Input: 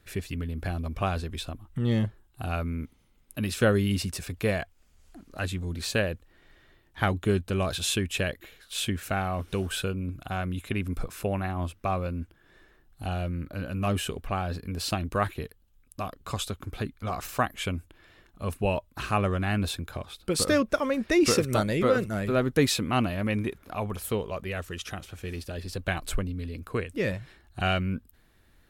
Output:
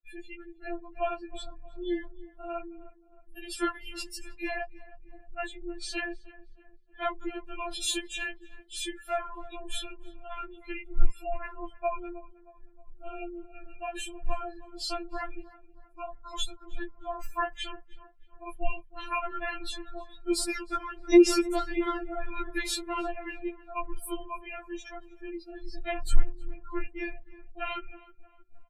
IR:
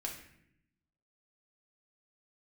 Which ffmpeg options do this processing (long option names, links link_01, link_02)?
-filter_complex "[0:a]afftdn=noise_reduction=33:noise_floor=-40,asplit=2[link_01][link_02];[link_02]adelay=313,lowpass=frequency=1700:poles=1,volume=-18dB,asplit=2[link_03][link_04];[link_04]adelay=313,lowpass=frequency=1700:poles=1,volume=0.49,asplit=2[link_05][link_06];[link_06]adelay=313,lowpass=frequency=1700:poles=1,volume=0.49,asplit=2[link_07][link_08];[link_08]adelay=313,lowpass=frequency=1700:poles=1,volume=0.49[link_09];[link_01][link_03][link_05][link_07][link_09]amix=inputs=5:normalize=0,asubboost=boost=9:cutoff=57,afftfilt=real='re*4*eq(mod(b,16),0)':imag='im*4*eq(mod(b,16),0)':win_size=2048:overlap=0.75"